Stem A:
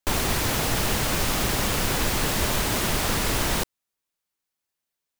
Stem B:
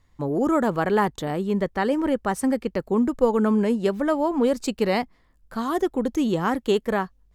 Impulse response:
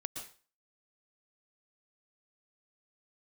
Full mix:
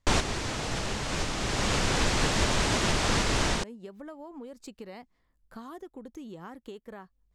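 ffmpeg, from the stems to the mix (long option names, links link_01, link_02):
-filter_complex "[0:a]lowpass=frequency=7800:width=0.5412,lowpass=frequency=7800:width=1.3066,volume=1dB[link_01];[1:a]acompressor=threshold=-29dB:ratio=12,volume=-2.5dB,afade=type=out:start_time=1.28:duration=0.26:silence=0.398107,afade=type=in:start_time=3.46:duration=0.26:silence=0.316228,asplit=2[link_02][link_03];[link_03]apad=whole_len=228971[link_04];[link_01][link_04]sidechaincompress=threshold=-50dB:ratio=5:attack=30:release=644[link_05];[link_05][link_02]amix=inputs=2:normalize=0"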